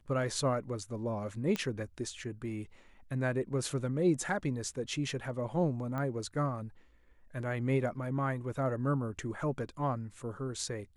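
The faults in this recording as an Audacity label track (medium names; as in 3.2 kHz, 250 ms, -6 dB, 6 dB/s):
1.560000	1.560000	pop -19 dBFS
5.980000	5.980000	pop -25 dBFS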